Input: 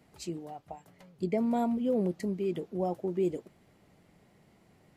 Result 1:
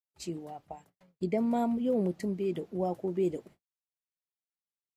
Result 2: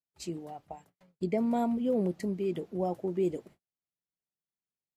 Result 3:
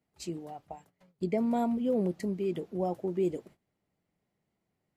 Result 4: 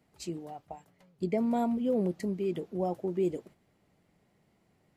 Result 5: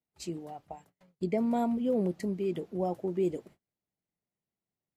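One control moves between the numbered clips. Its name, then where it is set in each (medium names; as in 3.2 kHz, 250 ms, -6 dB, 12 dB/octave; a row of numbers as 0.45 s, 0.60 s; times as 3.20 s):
gate, range: -59 dB, -44 dB, -19 dB, -7 dB, -32 dB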